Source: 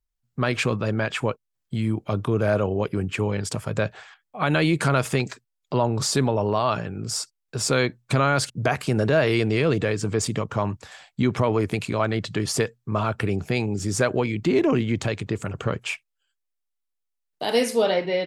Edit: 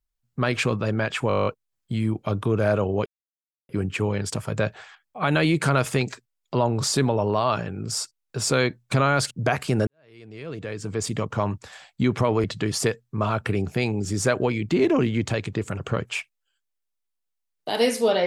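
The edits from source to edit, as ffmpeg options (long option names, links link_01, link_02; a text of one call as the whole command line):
ffmpeg -i in.wav -filter_complex "[0:a]asplit=13[link_01][link_02][link_03][link_04][link_05][link_06][link_07][link_08][link_09][link_10][link_11][link_12][link_13];[link_01]atrim=end=1.302[link_14];[link_02]atrim=start=1.278:end=1.302[link_15];[link_03]atrim=start=1.278:end=1.302[link_16];[link_04]atrim=start=1.278:end=1.302[link_17];[link_05]atrim=start=1.278:end=1.302[link_18];[link_06]atrim=start=1.278:end=1.302[link_19];[link_07]atrim=start=1.278:end=1.302[link_20];[link_08]atrim=start=1.278:end=1.302[link_21];[link_09]atrim=start=1.278:end=1.302[link_22];[link_10]atrim=start=1.278:end=2.88,asetpts=PTS-STARTPTS,afade=type=out:start_time=1.598:duration=0.004:curve=hsin,apad=pad_dur=0.63[link_23];[link_11]atrim=start=2.88:end=9.06,asetpts=PTS-STARTPTS,afade=type=in:duration=0.004:curve=hsin,afade=type=out:start_time=6.176:duration=0.004:curve=hsin[link_24];[link_12]atrim=start=9.06:end=11.632,asetpts=PTS-STARTPTS,afade=type=in:duration=1.37:curve=qua[link_25];[link_13]atrim=start=12.178[link_26];[link_14][link_15]acrossfade=duration=0.004:curve1=hsin:curve2=hsin[link_27];[link_27][link_16]acrossfade=duration=0.004:curve1=hsin:curve2=hsin[link_28];[link_28][link_17]acrossfade=duration=0.004:curve1=hsin:curve2=hsin[link_29];[link_29][link_18]acrossfade=duration=0.004:curve1=hsin:curve2=hsin[link_30];[link_30][link_19]acrossfade=duration=0.004:curve1=hsin:curve2=hsin[link_31];[link_31][link_20]acrossfade=duration=0.004:curve1=hsin:curve2=hsin[link_32];[link_32][link_21]acrossfade=duration=0.004:curve1=hsin:curve2=hsin[link_33];[link_33][link_22]acrossfade=duration=0.004:curve1=hsin:curve2=hsin[link_34];[link_23][link_24][link_25]concat=n=3:v=0:a=1[link_35];[link_34][link_35]acrossfade=duration=0.004:curve1=hsin:curve2=hsin[link_36];[link_36][link_26]acrossfade=duration=0.004:curve1=hsin:curve2=hsin" out.wav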